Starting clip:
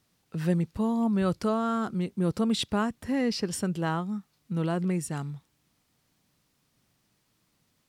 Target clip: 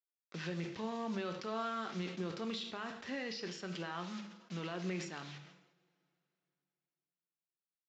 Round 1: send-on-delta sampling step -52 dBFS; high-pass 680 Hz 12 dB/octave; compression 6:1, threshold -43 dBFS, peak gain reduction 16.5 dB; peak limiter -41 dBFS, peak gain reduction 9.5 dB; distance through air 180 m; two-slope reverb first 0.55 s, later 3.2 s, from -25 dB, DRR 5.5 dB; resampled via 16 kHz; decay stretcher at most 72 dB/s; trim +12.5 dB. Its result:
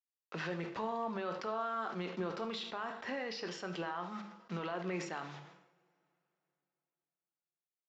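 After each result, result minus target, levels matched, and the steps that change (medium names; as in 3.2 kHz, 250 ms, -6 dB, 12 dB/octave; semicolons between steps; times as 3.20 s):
send-on-delta sampling: distortion -8 dB; 1 kHz band +3.0 dB
change: send-on-delta sampling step -44.5 dBFS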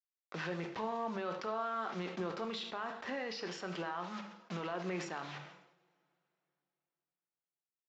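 1 kHz band +3.0 dB
add after high-pass: peaking EQ 860 Hz -14.5 dB 2.6 oct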